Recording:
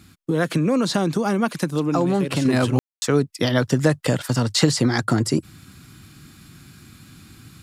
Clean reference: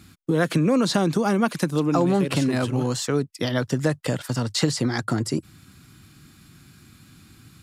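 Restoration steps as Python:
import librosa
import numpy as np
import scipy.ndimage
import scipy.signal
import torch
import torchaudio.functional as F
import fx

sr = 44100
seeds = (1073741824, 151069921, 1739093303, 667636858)

y = fx.fix_ambience(x, sr, seeds[0], print_start_s=0.0, print_end_s=0.5, start_s=2.79, end_s=3.02)
y = fx.gain(y, sr, db=fx.steps((0.0, 0.0), (2.45, -4.5)))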